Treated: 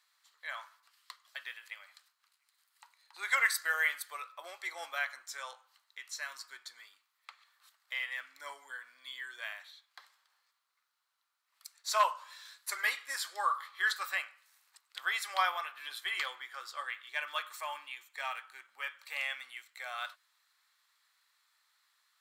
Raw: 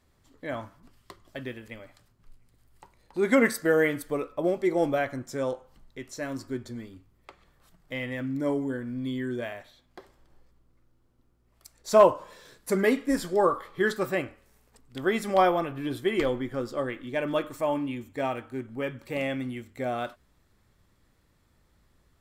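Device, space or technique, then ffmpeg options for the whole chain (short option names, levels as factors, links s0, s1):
headphones lying on a table: -af "highpass=f=1100:w=0.5412,highpass=f=1100:w=1.3066,equalizer=f=4100:t=o:w=0.31:g=6.5"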